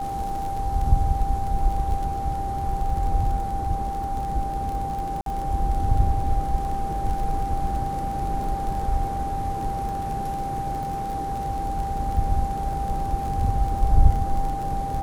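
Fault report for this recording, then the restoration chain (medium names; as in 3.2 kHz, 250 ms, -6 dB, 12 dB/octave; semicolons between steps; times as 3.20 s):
crackle 32 per s -29 dBFS
whine 790 Hz -27 dBFS
5.21–5.26 s: dropout 52 ms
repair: de-click; band-stop 790 Hz, Q 30; interpolate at 5.21 s, 52 ms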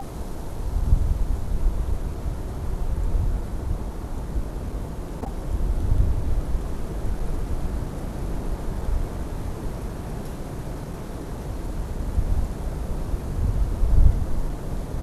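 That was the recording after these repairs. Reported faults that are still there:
nothing left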